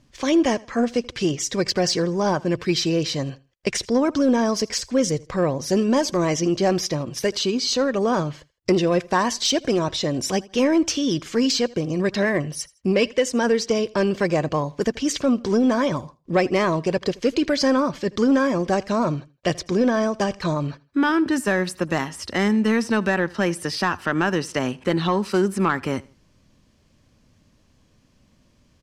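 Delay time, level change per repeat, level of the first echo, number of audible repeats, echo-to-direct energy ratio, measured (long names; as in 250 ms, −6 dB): 81 ms, −10.0 dB, −23.0 dB, 2, −22.5 dB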